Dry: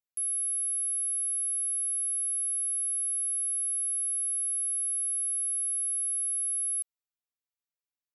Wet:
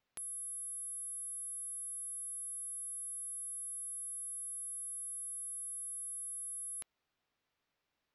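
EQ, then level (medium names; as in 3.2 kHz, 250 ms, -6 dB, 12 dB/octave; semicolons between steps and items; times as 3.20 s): distance through air 210 m; +17.5 dB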